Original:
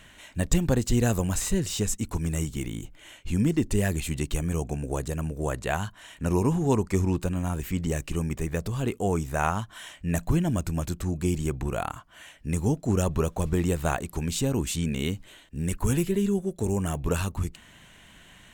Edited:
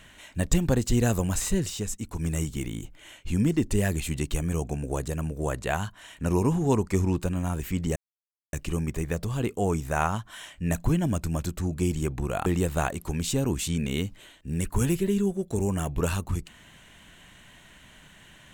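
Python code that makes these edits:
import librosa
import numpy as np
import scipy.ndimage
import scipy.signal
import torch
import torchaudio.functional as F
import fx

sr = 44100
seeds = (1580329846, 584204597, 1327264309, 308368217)

y = fx.edit(x, sr, fx.clip_gain(start_s=1.7, length_s=0.49, db=-4.5),
    fx.insert_silence(at_s=7.96, length_s=0.57),
    fx.cut(start_s=11.89, length_s=1.65), tone=tone)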